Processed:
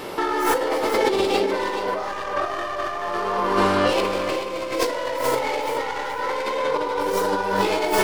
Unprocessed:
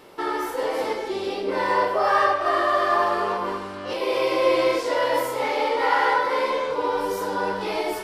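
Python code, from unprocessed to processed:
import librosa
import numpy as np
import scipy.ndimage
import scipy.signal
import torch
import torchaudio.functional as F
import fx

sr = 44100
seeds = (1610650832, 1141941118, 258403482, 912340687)

p1 = fx.tracing_dist(x, sr, depth_ms=0.13)
p2 = fx.over_compress(p1, sr, threshold_db=-32.0, ratio=-1.0)
p3 = p2 + fx.echo_feedback(p2, sr, ms=428, feedback_pct=28, wet_db=-9, dry=0)
y = p3 * 10.0 ** (7.5 / 20.0)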